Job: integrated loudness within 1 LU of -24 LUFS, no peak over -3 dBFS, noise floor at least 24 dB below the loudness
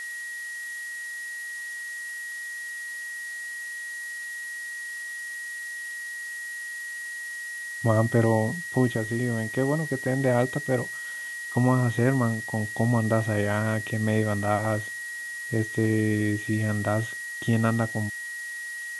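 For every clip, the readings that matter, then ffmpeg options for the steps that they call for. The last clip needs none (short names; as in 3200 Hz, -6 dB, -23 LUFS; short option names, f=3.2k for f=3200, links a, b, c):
steady tone 1900 Hz; tone level -33 dBFS; noise floor -36 dBFS; noise floor target -52 dBFS; loudness -27.5 LUFS; peak -7.5 dBFS; loudness target -24.0 LUFS
-> -af "bandreject=f=1.9k:w=30"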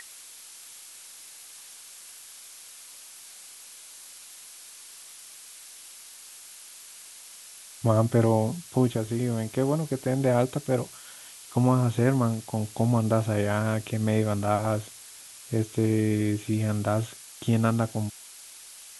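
steady tone none; noise floor -47 dBFS; noise floor target -50 dBFS
-> -af "afftdn=nr=6:nf=-47"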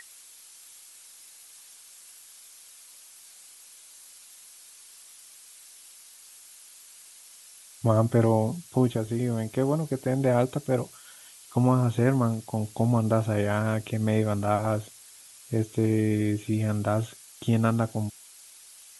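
noise floor -51 dBFS; loudness -26.5 LUFS; peak -8.0 dBFS; loudness target -24.0 LUFS
-> -af "volume=2.5dB"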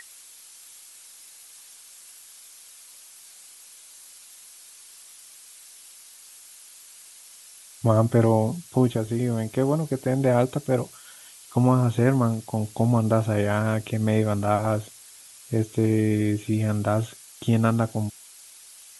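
loudness -24.0 LUFS; peak -5.5 dBFS; noise floor -48 dBFS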